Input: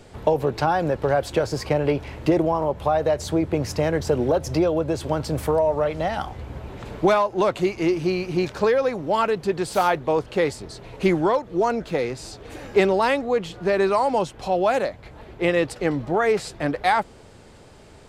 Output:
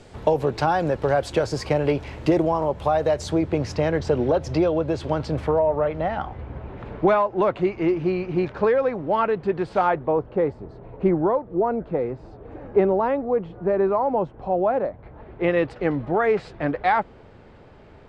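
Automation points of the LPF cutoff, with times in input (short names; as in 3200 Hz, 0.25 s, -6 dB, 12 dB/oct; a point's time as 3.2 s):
3.07 s 9000 Hz
3.79 s 4500 Hz
5.2 s 4500 Hz
5.65 s 2100 Hz
9.79 s 2100 Hz
10.23 s 1000 Hz
14.86 s 1000 Hz
15.57 s 2400 Hz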